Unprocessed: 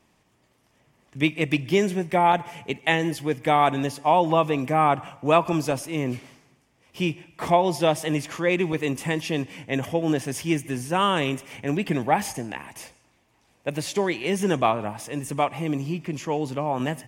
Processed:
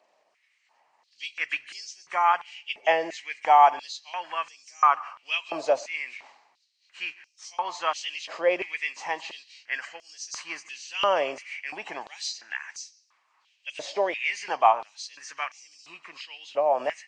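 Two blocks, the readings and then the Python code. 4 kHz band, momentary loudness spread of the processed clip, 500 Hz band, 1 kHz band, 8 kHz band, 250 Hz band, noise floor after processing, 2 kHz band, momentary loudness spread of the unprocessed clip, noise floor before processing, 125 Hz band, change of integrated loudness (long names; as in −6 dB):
−2.0 dB, 18 LU, −5.0 dB, −0.5 dB, −4.0 dB, −21.5 dB, −70 dBFS, −1.5 dB, 10 LU, −65 dBFS, below −30 dB, −3.0 dB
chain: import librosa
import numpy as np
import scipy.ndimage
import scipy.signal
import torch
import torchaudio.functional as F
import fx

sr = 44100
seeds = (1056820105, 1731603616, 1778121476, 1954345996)

y = fx.freq_compress(x, sr, knee_hz=2700.0, ratio=1.5)
y = fx.filter_held_highpass(y, sr, hz=2.9, low_hz=610.0, high_hz=5600.0)
y = y * librosa.db_to_amplitude(-4.5)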